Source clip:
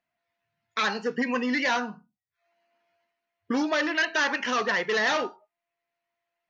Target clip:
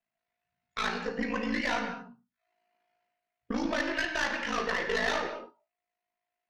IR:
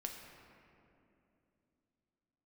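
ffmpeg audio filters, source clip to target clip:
-filter_complex "[0:a]aeval=exprs='val(0)*sin(2*PI*27*n/s)':c=same[a];[1:a]atrim=start_sample=2205,afade=t=out:st=0.28:d=0.01,atrim=end_sample=12789[b];[a][b]afir=irnorm=-1:irlink=0,aeval=exprs='0.126*(cos(1*acos(clip(val(0)/0.126,-1,1)))-cos(1*PI/2))+0.0224*(cos(2*acos(clip(val(0)/0.126,-1,1)))-cos(2*PI/2))+0.00501*(cos(4*acos(clip(val(0)/0.126,-1,1)))-cos(4*PI/2))+0.00631*(cos(6*acos(clip(val(0)/0.126,-1,1)))-cos(6*PI/2))':c=same"

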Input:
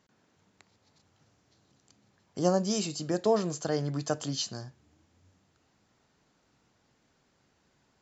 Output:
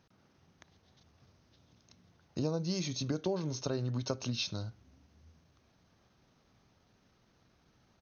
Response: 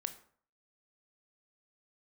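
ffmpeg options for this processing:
-af "lowshelf=f=190:g=5.5,acompressor=threshold=-31dB:ratio=4,asetrate=38170,aresample=44100,atempo=1.15535"

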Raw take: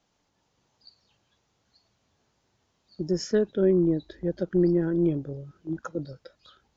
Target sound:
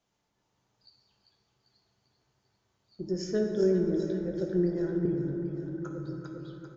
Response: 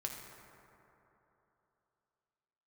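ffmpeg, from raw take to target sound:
-filter_complex "[0:a]aecho=1:1:395|790|1185|1580|1975|2370|2765:0.376|0.214|0.122|0.0696|0.0397|0.0226|0.0129,asettb=1/sr,asplit=3[a][b][c];[a]atrim=end=5.054[d];[b]atrim=start=5.05:end=6.06,asetpts=PTS-STARTPTS,afade=t=in:d=0.004:c=qsin,afade=t=out:st=1.006:d=0.004:c=qsin,acrossover=split=230[e][f];[f]acompressor=threshold=-32dB:ratio=6[g];[e][g]amix=inputs=2:normalize=0[h];[c]atrim=start=6.056[i];[d][h]acrossfade=d=0.004:c1=hsin:c2=qsin[j];[j][i]acrossfade=d=0.004:c1=qsin:c2=hsin[k];[1:a]atrim=start_sample=2205[l];[k][l]afir=irnorm=-1:irlink=0,volume=-4.5dB"

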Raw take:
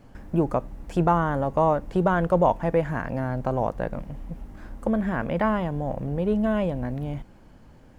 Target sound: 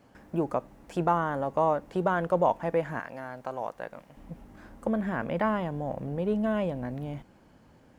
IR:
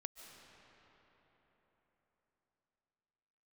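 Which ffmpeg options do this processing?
-af "asetnsamples=n=441:p=0,asendcmd='3 highpass f 1000;4.17 highpass f 140',highpass=f=270:p=1,volume=-3dB"

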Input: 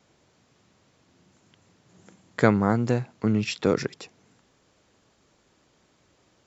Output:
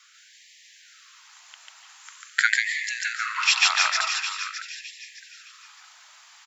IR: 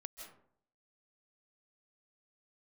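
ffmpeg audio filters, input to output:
-filter_complex "[0:a]equalizer=f=700:w=2:g=-15,aecho=1:1:613|1226|1839:0.224|0.0694|0.0215,asplit=2[a][b];[b]acompressor=threshold=-29dB:ratio=6,volume=-0.5dB[c];[a][c]amix=inputs=2:normalize=0,afreqshift=-36,asplit=2[d][e];[1:a]atrim=start_sample=2205,adelay=144[f];[e][f]afir=irnorm=-1:irlink=0,volume=6dB[g];[d][g]amix=inputs=2:normalize=0,afftfilt=real='re*gte(b*sr/1024,600*pow(1700/600,0.5+0.5*sin(2*PI*0.45*pts/sr)))':imag='im*gte(b*sr/1024,600*pow(1700/600,0.5+0.5*sin(2*PI*0.45*pts/sr)))':win_size=1024:overlap=0.75,volume=8dB"

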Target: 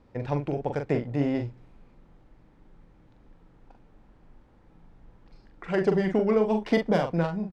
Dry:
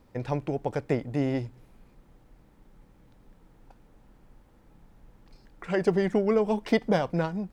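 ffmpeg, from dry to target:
-filter_complex "[0:a]adynamicsmooth=sensitivity=3.5:basefreq=5.3k,asplit=2[a][b];[b]adelay=42,volume=-6dB[c];[a][c]amix=inputs=2:normalize=0"

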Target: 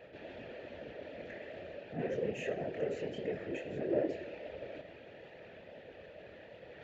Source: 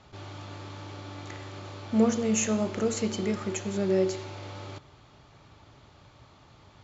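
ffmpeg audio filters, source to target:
-filter_complex "[0:a]asoftclip=type=tanh:threshold=-26dB,asplit=3[a][b][c];[a]bandpass=f=530:t=q:w=8,volume=0dB[d];[b]bandpass=f=1.84k:t=q:w=8,volume=-6dB[e];[c]bandpass=f=2.48k:t=q:w=8,volume=-9dB[f];[d][e][f]amix=inputs=3:normalize=0,flanger=delay=20:depth=6.6:speed=2.4,afftfilt=real='hypot(re,im)*cos(2*PI*random(0))':imag='hypot(re,im)*sin(2*PI*random(1))':win_size=512:overlap=0.75,highpass=56,bass=f=250:g=6,treble=f=4k:g=-8,areverse,acompressor=mode=upward:threshold=-57dB:ratio=2.5,areverse,volume=16dB"

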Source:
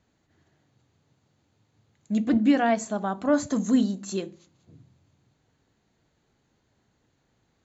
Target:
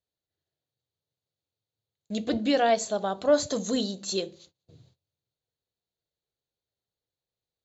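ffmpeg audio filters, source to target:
-af "agate=range=-24dB:threshold=-57dB:ratio=16:detection=peak,equalizer=f=250:t=o:w=1:g=-10,equalizer=f=500:t=o:w=1:g=8,equalizer=f=1k:t=o:w=1:g=-4,equalizer=f=2k:t=o:w=1:g=-4,equalizer=f=4k:t=o:w=1:g=12"

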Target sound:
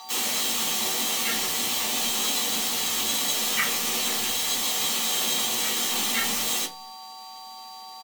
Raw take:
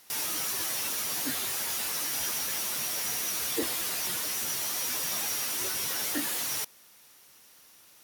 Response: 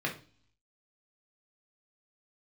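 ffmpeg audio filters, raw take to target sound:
-filter_complex "[0:a]aeval=exprs='val(0)+0.00708*sin(2*PI*2800*n/s)':c=same,aeval=exprs='val(0)*sin(2*PI*1900*n/s)':c=same,asplit=3[a][b][c];[b]asetrate=37084,aresample=44100,atempo=1.18921,volume=-2dB[d];[c]asetrate=55563,aresample=44100,atempo=0.793701,volume=-5dB[e];[a][d][e]amix=inputs=3:normalize=0,acrossover=split=390|1700[f][g][h];[h]crystalizer=i=1:c=0[i];[f][g][i]amix=inputs=3:normalize=0[j];[1:a]atrim=start_sample=2205,asetrate=70560,aresample=44100[k];[j][k]afir=irnorm=-1:irlink=0,volume=4dB"

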